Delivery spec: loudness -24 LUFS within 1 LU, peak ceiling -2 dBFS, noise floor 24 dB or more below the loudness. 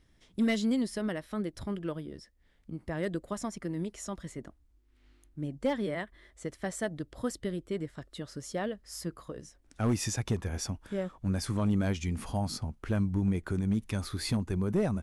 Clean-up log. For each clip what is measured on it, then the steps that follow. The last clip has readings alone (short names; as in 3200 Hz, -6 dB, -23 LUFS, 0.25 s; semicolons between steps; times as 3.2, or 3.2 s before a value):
clipped 0.3%; flat tops at -21.0 dBFS; loudness -33.5 LUFS; peak -21.0 dBFS; loudness target -24.0 LUFS
-> clip repair -21 dBFS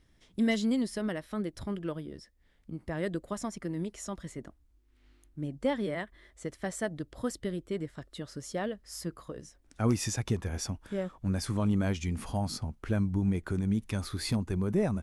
clipped 0.0%; loudness -33.5 LUFS; peak -15.0 dBFS; loudness target -24.0 LUFS
-> gain +9.5 dB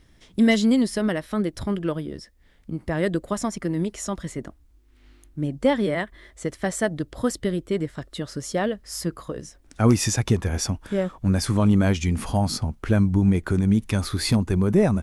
loudness -24.0 LUFS; peak -5.5 dBFS; noise floor -55 dBFS